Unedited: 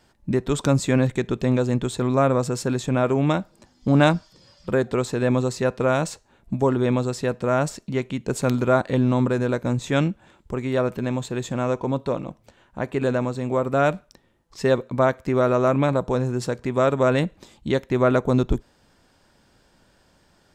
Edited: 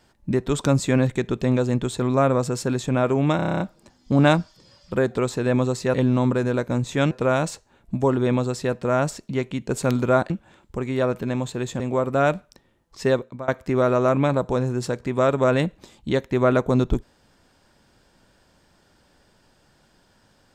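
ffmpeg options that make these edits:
-filter_complex "[0:a]asplit=14[s0][s1][s2][s3][s4][s5][s6][s7][s8][s9][s10][s11][s12][s13];[s0]atrim=end=3.392[s14];[s1]atrim=start=3.358:end=3.392[s15];[s2]atrim=start=3.358:end=3.392[s16];[s3]atrim=start=3.358:end=3.392[s17];[s4]atrim=start=3.358:end=3.392[s18];[s5]atrim=start=3.358:end=3.392[s19];[s6]atrim=start=3.358:end=3.392[s20];[s7]atrim=start=3.358:end=3.392[s21];[s8]atrim=start=3.358:end=5.702[s22];[s9]atrim=start=8.888:end=10.062[s23];[s10]atrim=start=5.698:end=8.892[s24];[s11]atrim=start=10.058:end=11.562[s25];[s12]atrim=start=13.388:end=15.07,asetpts=PTS-STARTPTS,afade=t=out:st=1.282:d=0.4:silence=0.0707946[s26];[s13]atrim=start=15.07,asetpts=PTS-STARTPTS,afade=t=in:d=0.004:c=hsin:silence=0.0707946[s27];[s14][s15]acrossfade=d=0.004:c1=hsin:c2=hsin[s28];[s28][s16]acrossfade=d=0.004:c1=hsin:c2=hsin[s29];[s29][s17]acrossfade=d=0.004:c1=hsin:c2=hsin[s30];[s30][s18]acrossfade=d=0.004:c1=hsin:c2=hsin[s31];[s31][s19]acrossfade=d=0.004:c1=hsin:c2=hsin[s32];[s32][s20]acrossfade=d=0.004:c1=hsin:c2=hsin[s33];[s33][s21]acrossfade=d=0.004:c1=hsin:c2=hsin[s34];[s34][s22]acrossfade=d=0.004:c1=hsin:c2=hsin[s35];[s35][s23]acrossfade=d=0.004:c1=hsin:c2=hsin[s36];[s36][s24]acrossfade=d=0.004:c1=hsin:c2=hsin[s37];[s37][s25]acrossfade=d=0.004:c1=hsin:c2=hsin[s38];[s26][s27]concat=n=2:v=0:a=1[s39];[s38][s39]acrossfade=d=0.004:c1=hsin:c2=hsin"

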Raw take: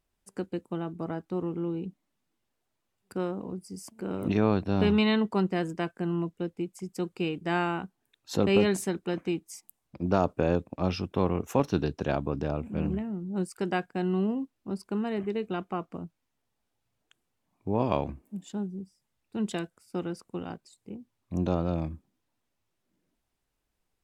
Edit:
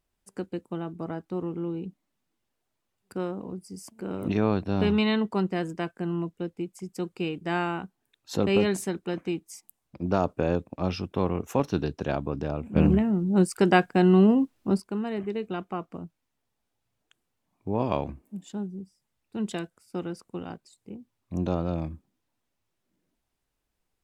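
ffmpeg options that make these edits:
-filter_complex "[0:a]asplit=3[s0][s1][s2];[s0]atrim=end=12.762[s3];[s1]atrim=start=12.758:end=14.802,asetpts=PTS-STARTPTS,volume=2.99[s4];[s2]atrim=start=14.798[s5];[s3][s4]acrossfade=d=0.004:c1=hsin:c2=hsin[s6];[s6][s5]acrossfade=d=0.004:c1=hsin:c2=hsin"

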